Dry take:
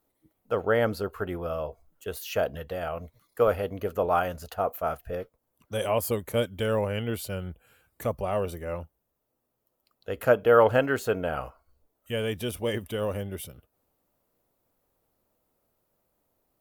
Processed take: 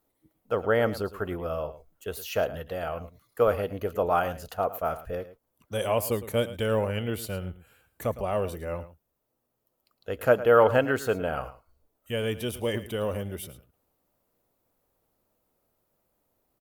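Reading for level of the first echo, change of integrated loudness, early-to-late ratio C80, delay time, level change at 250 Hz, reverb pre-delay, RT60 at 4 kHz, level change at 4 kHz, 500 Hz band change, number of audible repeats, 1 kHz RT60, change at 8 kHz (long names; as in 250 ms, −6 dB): −15.0 dB, 0.0 dB, no reverb audible, 109 ms, 0.0 dB, no reverb audible, no reverb audible, 0.0 dB, 0.0 dB, 1, no reverb audible, 0.0 dB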